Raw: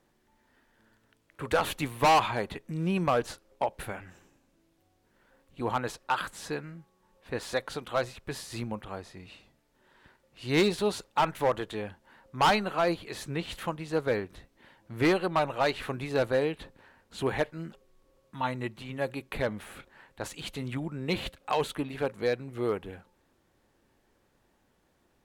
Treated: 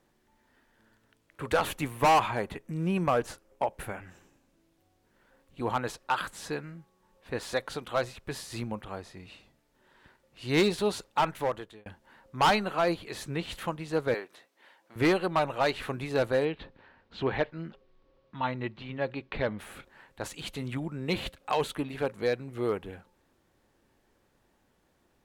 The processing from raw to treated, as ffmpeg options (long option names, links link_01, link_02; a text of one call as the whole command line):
ffmpeg -i in.wav -filter_complex "[0:a]asettb=1/sr,asplit=3[link_01][link_02][link_03];[link_01]atrim=end=1.674[link_04];[link_02]atrim=start=1.67:end=4.04,asetpts=PTS-STARTPTS,afade=type=in:duration=0.004:curve=qsin,afade=type=out:start_time=2.366:duration=0.004:curve=qsin,equalizer=frequency=4000:width_type=o:width=0.77:gain=-5.5[link_05];[link_03]atrim=start=4.036[link_06];[link_04][link_05]acrossfade=duration=0.004:curve1=hsin:curve2=qsin[link_07];[link_07][link_06]acrossfade=duration=0.004:curve1=qsin:curve2=hsin,asettb=1/sr,asplit=3[link_08][link_09][link_10];[link_08]atrim=end=14.144[link_11];[link_09]atrim=start=14.14:end=14.96,asetpts=PTS-STARTPTS,afade=type=in:duration=0.004:curve=qsin,afade=type=out:start_time=0.816:duration=0.004:curve=qsin,highpass=500[link_12];[link_10]atrim=start=14.956[link_13];[link_11][link_12]acrossfade=duration=0.004:curve1=hsin:curve2=qsin[link_14];[link_14][link_13]acrossfade=duration=0.004:curve1=qsin:curve2=hsin,asettb=1/sr,asplit=3[link_15][link_16][link_17];[link_15]atrim=end=16.454[link_18];[link_16]atrim=start=16.45:end=19.59,asetpts=PTS-STARTPTS,afade=type=in:duration=0.004:curve=qsin,afade=type=out:start_time=3.136:duration=0.004:curve=qsin,lowpass=frequency=4500:width=0.5412,lowpass=frequency=4500:width=1.3066[link_19];[link_17]atrim=start=19.586[link_20];[link_18][link_19]acrossfade=duration=0.004:curve1=hsin:curve2=qsin[link_21];[link_21][link_20]acrossfade=duration=0.004:curve1=qsin:curve2=hsin,asplit=2[link_22][link_23];[link_22]atrim=end=11.86,asetpts=PTS-STARTPTS,afade=type=out:start_time=11.03:duration=0.83:curve=qsin[link_24];[link_23]atrim=start=11.86,asetpts=PTS-STARTPTS,afade=type=in:duration=0.004:curve=hsin[link_25];[link_24][link_25]concat=n=2:v=0:a=1" out.wav